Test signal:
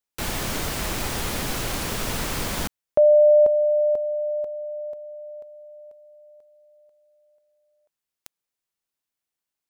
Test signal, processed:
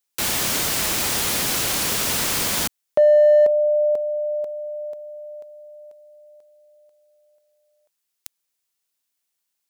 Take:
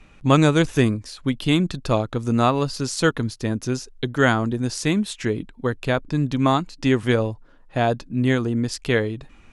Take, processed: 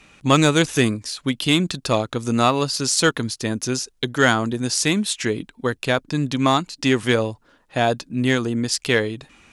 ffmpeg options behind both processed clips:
-filter_complex "[0:a]highpass=f=140:p=1,highshelf=f=2.5k:g=9,asplit=2[a][b];[b]asoftclip=type=hard:threshold=-13.5dB,volume=-7dB[c];[a][c]amix=inputs=2:normalize=0,volume=-2dB"

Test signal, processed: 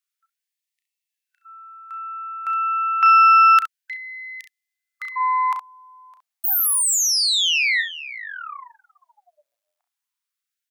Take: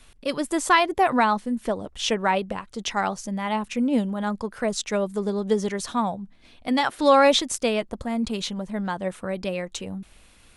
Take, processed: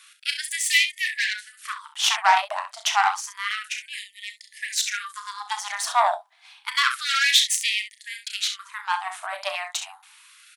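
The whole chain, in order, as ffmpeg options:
-af "aecho=1:1:34|66:0.398|0.335,aeval=exprs='0.631*(cos(1*acos(clip(val(0)/0.631,-1,1)))-cos(1*PI/2))+0.0562*(cos(8*acos(clip(val(0)/0.631,-1,1)))-cos(8*PI/2))':c=same,afftfilt=real='re*gte(b*sr/1024,590*pow(1800/590,0.5+0.5*sin(2*PI*0.29*pts/sr)))':imag='im*gte(b*sr/1024,590*pow(1800/590,0.5+0.5*sin(2*PI*0.29*pts/sr)))':win_size=1024:overlap=0.75,volume=5dB"

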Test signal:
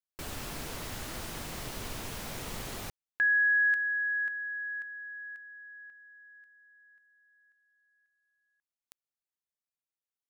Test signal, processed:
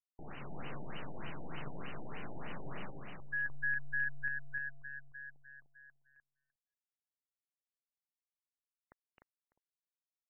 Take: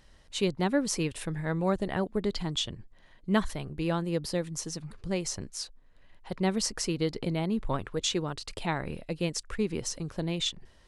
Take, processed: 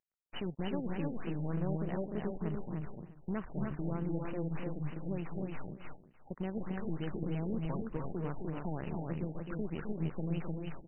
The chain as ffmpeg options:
-af "lowshelf=f=120:t=q:w=3:g=-6,acompressor=threshold=-27dB:ratio=5:attack=1.2:release=135:knee=1:detection=rms,aeval=exprs='sgn(val(0))*max(abs(val(0))-0.00251,0)':c=same,aexciter=amount=3.7:drive=8.2:freq=3.2k,tremolo=f=140:d=0.4,aeval=exprs='(tanh(39.8*val(0)+0.6)-tanh(0.6))/39.8':c=same,aecho=1:1:262|300|600|656:0.447|0.668|0.106|0.106,afftfilt=real='re*lt(b*sr/1024,860*pow(3100/860,0.5+0.5*sin(2*PI*3.3*pts/sr)))':imag='im*lt(b*sr/1024,860*pow(3100/860,0.5+0.5*sin(2*PI*3.3*pts/sr)))':win_size=1024:overlap=0.75,volume=1dB"

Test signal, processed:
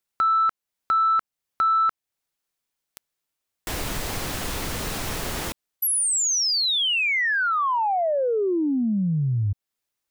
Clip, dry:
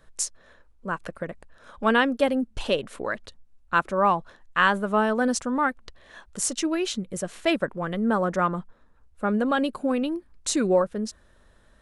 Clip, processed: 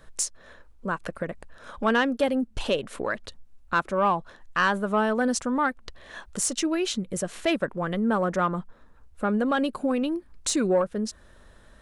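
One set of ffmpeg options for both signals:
-filter_complex "[0:a]asplit=2[a][b];[b]acompressor=threshold=-35dB:ratio=6,volume=3dB[c];[a][c]amix=inputs=2:normalize=0,asoftclip=type=tanh:threshold=-9.5dB,volume=-2.5dB"

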